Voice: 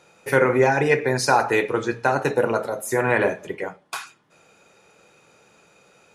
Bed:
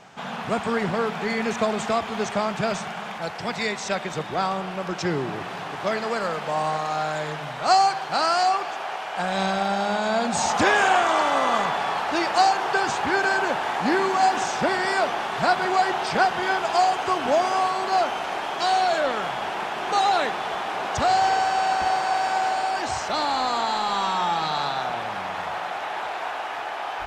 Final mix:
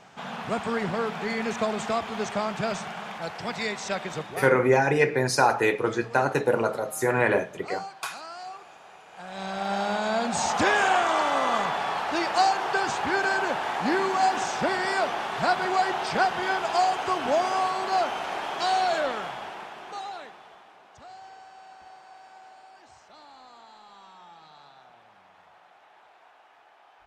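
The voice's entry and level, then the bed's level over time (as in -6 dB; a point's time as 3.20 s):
4.10 s, -2.5 dB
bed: 4.17 s -3.5 dB
4.67 s -19 dB
9.08 s -19 dB
9.75 s -3 dB
18.99 s -3 dB
20.84 s -26 dB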